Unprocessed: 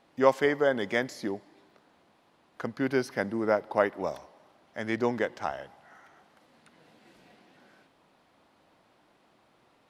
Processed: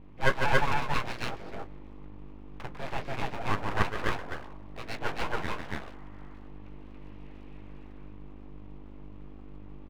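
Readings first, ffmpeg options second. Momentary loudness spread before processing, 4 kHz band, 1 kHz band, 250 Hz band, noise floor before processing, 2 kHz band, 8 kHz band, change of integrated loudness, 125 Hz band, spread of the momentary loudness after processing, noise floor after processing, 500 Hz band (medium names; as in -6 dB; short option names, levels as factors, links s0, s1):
15 LU, +4.0 dB, +1.0 dB, -7.0 dB, -66 dBFS, +1.5 dB, no reading, -3.5 dB, +6.5 dB, 21 LU, -44 dBFS, -9.0 dB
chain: -af "highpass=f=300:w=0.5412,highpass=f=300:w=1.3066,equalizer=f=710:t=q:w=4:g=-6,equalizer=f=1000:t=q:w=4:g=8,equalizer=f=1500:t=q:w=4:g=-9,equalizer=f=2500:t=q:w=4:g=4,lowpass=f=3000:w=0.5412,lowpass=f=3000:w=1.3066,aeval=exprs='val(0)+0.00708*(sin(2*PI*50*n/s)+sin(2*PI*2*50*n/s)/2+sin(2*PI*3*50*n/s)/3+sin(2*PI*4*50*n/s)/4+sin(2*PI*5*50*n/s)/5)':c=same,flanger=delay=9.1:depth=8.1:regen=24:speed=2:shape=sinusoidal,aecho=1:1:148.7|279.9:0.501|1,aeval=exprs='abs(val(0))':c=same,volume=1.19"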